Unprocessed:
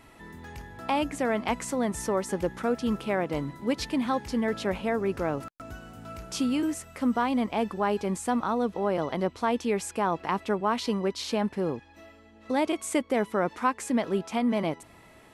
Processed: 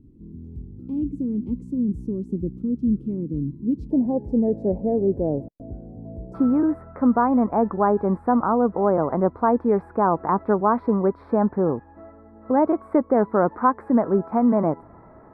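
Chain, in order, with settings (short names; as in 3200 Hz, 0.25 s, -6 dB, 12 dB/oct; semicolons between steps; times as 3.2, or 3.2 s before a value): inverse Chebyshev low-pass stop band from 640 Hz, stop band 40 dB, from 3.9 s stop band from 1200 Hz, from 6.33 s stop band from 2700 Hz; gain +7.5 dB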